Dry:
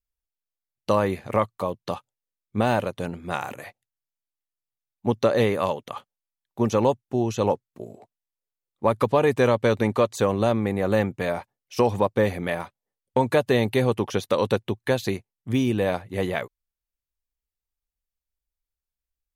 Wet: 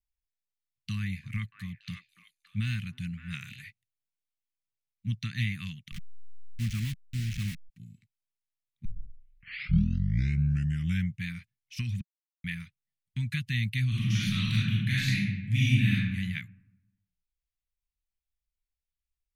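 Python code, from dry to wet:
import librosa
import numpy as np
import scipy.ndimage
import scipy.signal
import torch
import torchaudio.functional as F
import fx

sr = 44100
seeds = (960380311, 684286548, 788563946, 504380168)

y = fx.echo_stepped(x, sr, ms=285, hz=560.0, octaves=1.4, feedback_pct=70, wet_db=-3.5, at=(0.95, 3.62))
y = fx.delta_hold(y, sr, step_db=-27.0, at=(5.91, 7.68), fade=0.02)
y = fx.reverb_throw(y, sr, start_s=13.88, length_s=2.06, rt60_s=1.1, drr_db=-8.5)
y = fx.edit(y, sr, fx.tape_start(start_s=8.85, length_s=2.41),
    fx.silence(start_s=12.01, length_s=0.43), tone=tone)
y = scipy.signal.sosfilt(scipy.signal.ellip(3, 1.0, 60, [170.0, 2100.0], 'bandstop', fs=sr, output='sos'), y)
y = fx.high_shelf(y, sr, hz=4900.0, db=-11.5)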